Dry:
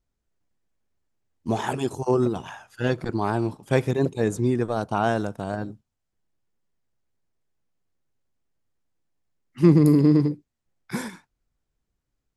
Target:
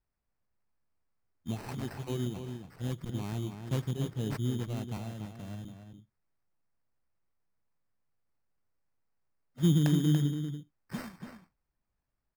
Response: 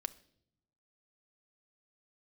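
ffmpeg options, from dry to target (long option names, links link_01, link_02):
-filter_complex "[0:a]firequalizer=gain_entry='entry(170,0);entry(400,-12);entry(1800,-18);entry(2900,-6)':delay=0.05:min_phase=1,asettb=1/sr,asplit=3[link_01][link_02][link_03];[link_01]atrim=end=4.974[link_04];[link_02]atrim=start=4.97:end=5.65,asetpts=PTS-STARTPTS,afade=type=in:duration=0.004:curve=qsin,afade=type=out:start_time=0.676:duration=0.004:curve=qsin,acrossover=split=210|630[link_05][link_06][link_07];[link_05]acompressor=threshold=-35dB:ratio=4[link_08];[link_06]acompressor=threshold=-45dB:ratio=4[link_09];[link_07]acompressor=threshold=-46dB:ratio=4[link_10];[link_08][link_09][link_10]amix=inputs=3:normalize=0[link_11];[link_03]atrim=start=5.646[link_12];[link_04][link_11]acrossfade=duration=0.004:curve1=hsin:curve2=qsin[link_13];[link_13][link_12]acrossfade=duration=0.004:curve1=qsin:curve2=hsin,crystalizer=i=2.5:c=0,acrusher=samples=13:mix=1:aa=0.000001,asplit=2[link_14][link_15];[link_15]adelay=285.7,volume=-7dB,highshelf=frequency=4000:gain=-6.43[link_16];[link_14][link_16]amix=inputs=2:normalize=0,volume=-6.5dB"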